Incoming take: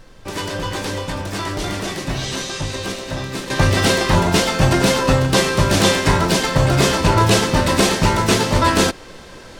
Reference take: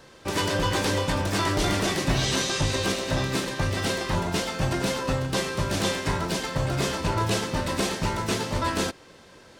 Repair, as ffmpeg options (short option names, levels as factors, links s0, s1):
-af "agate=range=0.0891:threshold=0.0708,asetnsamples=n=441:p=0,asendcmd='3.5 volume volume -11dB',volume=1"